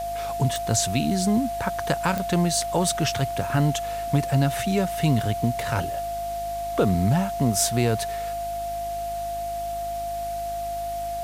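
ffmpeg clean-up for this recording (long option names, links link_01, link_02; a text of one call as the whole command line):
ffmpeg -i in.wav -af "adeclick=threshold=4,bandreject=frequency=52.2:width_type=h:width=4,bandreject=frequency=104.4:width_type=h:width=4,bandreject=frequency=156.6:width_type=h:width=4,bandreject=frequency=208.8:width_type=h:width=4,bandreject=frequency=261:width_type=h:width=4,bandreject=frequency=313.2:width_type=h:width=4,bandreject=frequency=690:width=30,afwtdn=0.0063" out.wav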